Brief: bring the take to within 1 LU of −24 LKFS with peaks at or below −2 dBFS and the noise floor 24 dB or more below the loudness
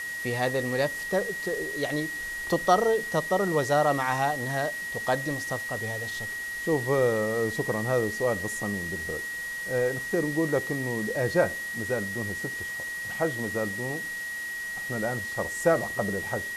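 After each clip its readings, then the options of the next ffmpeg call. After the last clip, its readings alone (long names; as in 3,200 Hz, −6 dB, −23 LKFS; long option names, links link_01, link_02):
interfering tone 1,900 Hz; level of the tone −32 dBFS; background noise floor −35 dBFS; target noise floor −52 dBFS; integrated loudness −28.0 LKFS; sample peak −7.5 dBFS; target loudness −24.0 LKFS
→ -af "bandreject=frequency=1900:width=30"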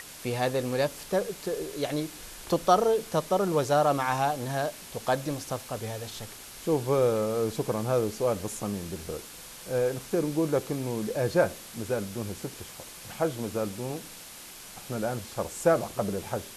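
interfering tone none found; background noise floor −45 dBFS; target noise floor −53 dBFS
→ -af "afftdn=noise_reduction=8:noise_floor=-45"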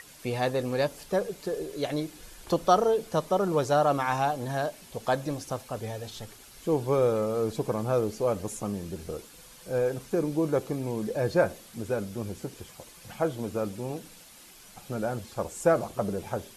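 background noise floor −51 dBFS; target noise floor −53 dBFS
→ -af "afftdn=noise_reduction=6:noise_floor=-51"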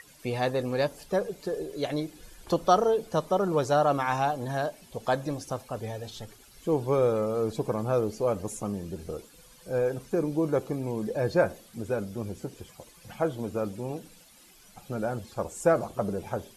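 background noise floor −55 dBFS; integrated loudness −29.0 LKFS; sample peak −8.0 dBFS; target loudness −24.0 LKFS
→ -af "volume=5dB"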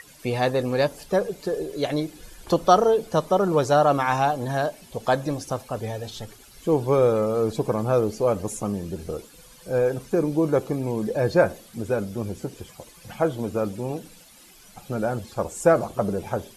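integrated loudness −24.0 LKFS; sample peak −3.0 dBFS; background noise floor −50 dBFS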